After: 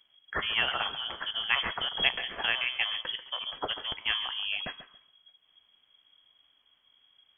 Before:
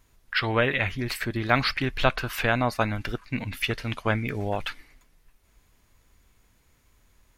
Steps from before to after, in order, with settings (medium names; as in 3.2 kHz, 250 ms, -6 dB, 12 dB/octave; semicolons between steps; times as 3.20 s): de-hum 125.1 Hz, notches 19; on a send: thinning echo 139 ms, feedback 18%, level -13 dB; on the sum: frequency inversion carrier 3.3 kHz; trim -5.5 dB